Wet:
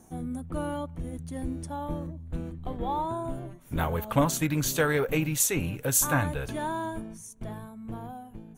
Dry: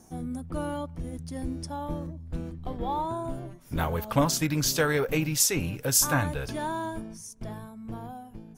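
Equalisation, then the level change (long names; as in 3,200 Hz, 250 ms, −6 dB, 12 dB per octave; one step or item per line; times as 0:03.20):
parametric band 5,100 Hz −14.5 dB 0.28 octaves
0.0 dB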